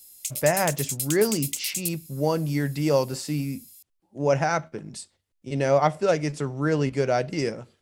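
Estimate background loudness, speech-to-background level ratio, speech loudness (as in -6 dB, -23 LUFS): -29.5 LUFS, 4.0 dB, -25.5 LUFS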